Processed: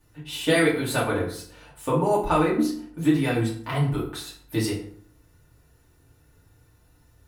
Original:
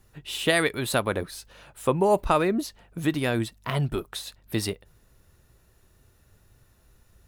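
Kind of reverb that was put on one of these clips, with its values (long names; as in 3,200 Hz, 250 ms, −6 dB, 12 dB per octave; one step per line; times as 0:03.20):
feedback delay network reverb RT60 0.57 s, low-frequency decay 1.2×, high-frequency decay 0.65×, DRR −7 dB
level −7 dB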